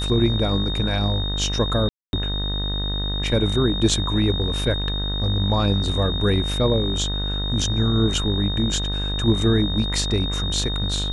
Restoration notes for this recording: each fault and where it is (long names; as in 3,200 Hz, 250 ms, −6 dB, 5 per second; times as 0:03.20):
mains buzz 50 Hz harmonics 39 −26 dBFS
whistle 3,700 Hz −27 dBFS
0:01.89–0:02.13: drop-out 241 ms